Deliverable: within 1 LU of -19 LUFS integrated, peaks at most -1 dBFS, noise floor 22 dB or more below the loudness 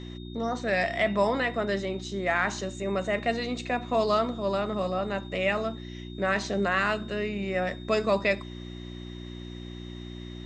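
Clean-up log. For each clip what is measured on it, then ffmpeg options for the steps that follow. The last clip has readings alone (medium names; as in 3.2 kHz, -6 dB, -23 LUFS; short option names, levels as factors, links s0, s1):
hum 60 Hz; highest harmonic 360 Hz; hum level -38 dBFS; steady tone 3.7 kHz; tone level -49 dBFS; loudness -28.0 LUFS; peak level -11.0 dBFS; loudness target -19.0 LUFS
-> -af "bandreject=f=60:t=h:w=4,bandreject=f=120:t=h:w=4,bandreject=f=180:t=h:w=4,bandreject=f=240:t=h:w=4,bandreject=f=300:t=h:w=4,bandreject=f=360:t=h:w=4"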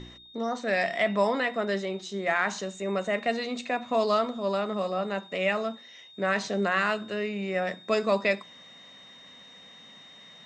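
hum not found; steady tone 3.7 kHz; tone level -49 dBFS
-> -af "bandreject=f=3700:w=30"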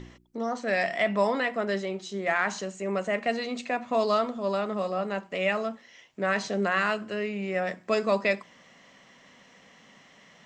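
steady tone not found; loudness -28.5 LUFS; peak level -11.5 dBFS; loudness target -19.0 LUFS
-> -af "volume=2.99"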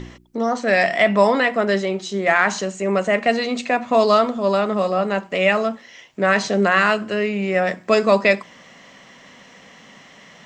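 loudness -19.0 LUFS; peak level -2.0 dBFS; noise floor -47 dBFS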